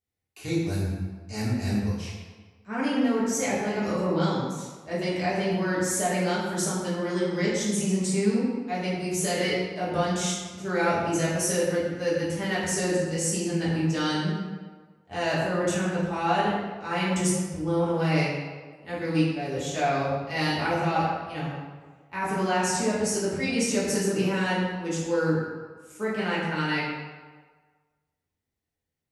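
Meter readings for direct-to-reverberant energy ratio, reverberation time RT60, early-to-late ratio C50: -9.5 dB, 1.5 s, 0.0 dB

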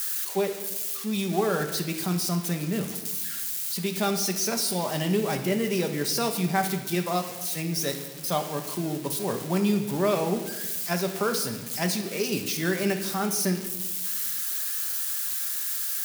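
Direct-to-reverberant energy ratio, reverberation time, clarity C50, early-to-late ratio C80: 4.5 dB, 1.2 s, 8.5 dB, 11.0 dB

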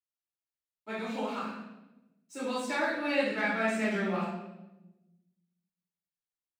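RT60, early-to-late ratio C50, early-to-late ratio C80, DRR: 1.0 s, 0.0 dB, 4.0 dB, -15.0 dB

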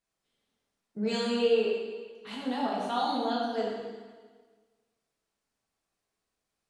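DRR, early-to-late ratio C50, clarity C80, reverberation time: -5.0 dB, 0.0 dB, 2.0 dB, 1.5 s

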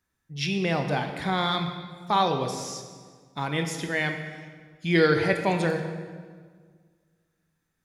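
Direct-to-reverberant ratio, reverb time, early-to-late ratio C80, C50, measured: 5.0 dB, 1.7 s, 8.0 dB, 7.0 dB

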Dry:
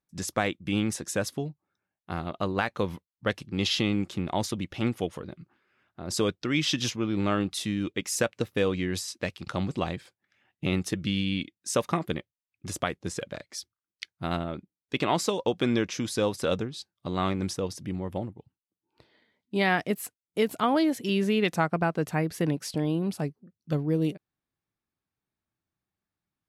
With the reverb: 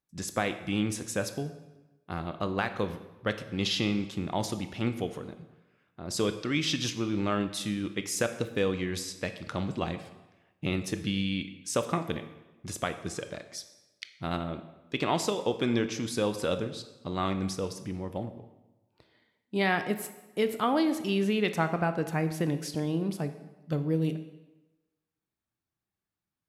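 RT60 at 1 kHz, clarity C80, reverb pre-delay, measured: 1.1 s, 13.0 dB, 20 ms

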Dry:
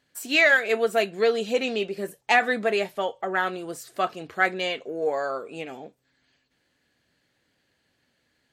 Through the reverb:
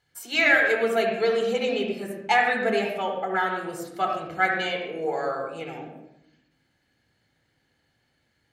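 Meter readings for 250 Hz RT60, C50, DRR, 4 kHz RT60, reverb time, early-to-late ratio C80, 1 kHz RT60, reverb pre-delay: 1.3 s, 2.5 dB, 1.5 dB, 0.55 s, 0.80 s, 5.0 dB, 0.75 s, 27 ms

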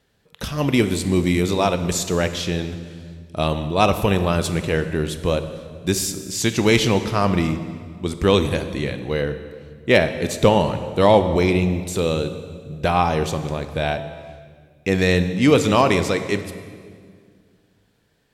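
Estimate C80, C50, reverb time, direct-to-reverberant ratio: 12.0 dB, 10.5 dB, 1.9 s, 9.5 dB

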